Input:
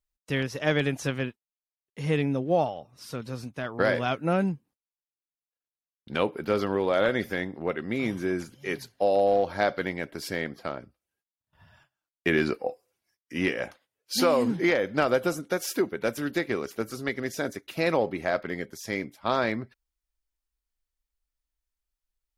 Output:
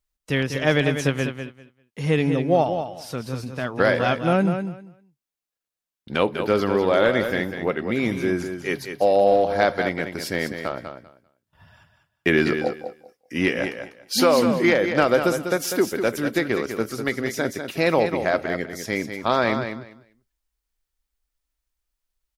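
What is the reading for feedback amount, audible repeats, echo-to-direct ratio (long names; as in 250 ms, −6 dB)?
18%, 2, −8.0 dB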